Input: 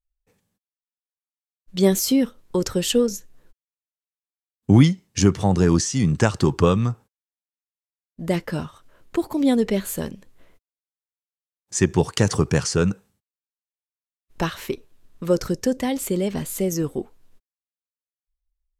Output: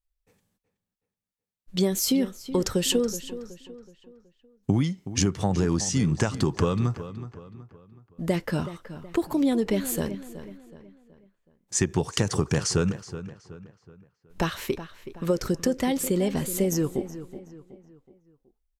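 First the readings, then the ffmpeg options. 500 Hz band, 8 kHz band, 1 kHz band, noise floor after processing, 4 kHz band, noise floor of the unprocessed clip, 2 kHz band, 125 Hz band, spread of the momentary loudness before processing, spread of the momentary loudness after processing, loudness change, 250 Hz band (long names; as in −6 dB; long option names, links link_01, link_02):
−4.5 dB, −1.5 dB, −4.5 dB, −85 dBFS, −2.0 dB, below −85 dBFS, −4.0 dB, −5.5 dB, 15 LU, 18 LU, −5.0 dB, −4.5 dB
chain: -filter_complex "[0:a]acompressor=threshold=-19dB:ratio=10,asplit=2[link_01][link_02];[link_02]adelay=373,lowpass=frequency=3700:poles=1,volume=-13dB,asplit=2[link_03][link_04];[link_04]adelay=373,lowpass=frequency=3700:poles=1,volume=0.43,asplit=2[link_05][link_06];[link_06]adelay=373,lowpass=frequency=3700:poles=1,volume=0.43,asplit=2[link_07][link_08];[link_08]adelay=373,lowpass=frequency=3700:poles=1,volume=0.43[link_09];[link_03][link_05][link_07][link_09]amix=inputs=4:normalize=0[link_10];[link_01][link_10]amix=inputs=2:normalize=0"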